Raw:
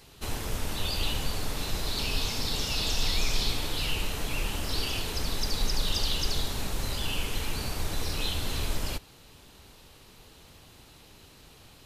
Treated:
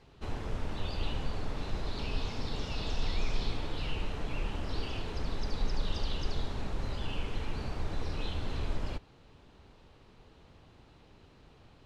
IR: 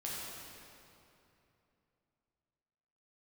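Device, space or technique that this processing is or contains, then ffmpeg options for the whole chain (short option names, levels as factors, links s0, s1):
through cloth: -af "lowpass=6300,highshelf=f=2800:g=-14.5,volume=0.75"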